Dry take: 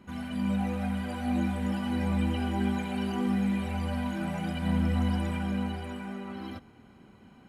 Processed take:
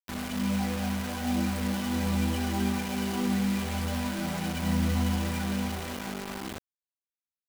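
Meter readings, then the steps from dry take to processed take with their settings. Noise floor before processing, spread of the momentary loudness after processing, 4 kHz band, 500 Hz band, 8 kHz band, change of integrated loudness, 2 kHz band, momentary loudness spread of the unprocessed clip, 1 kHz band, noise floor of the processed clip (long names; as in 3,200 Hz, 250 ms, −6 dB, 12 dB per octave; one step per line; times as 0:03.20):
−55 dBFS, 8 LU, +6.0 dB, +1.0 dB, +13.0 dB, +0.5 dB, +3.0 dB, 10 LU, +1.0 dB, below −85 dBFS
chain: bit reduction 6 bits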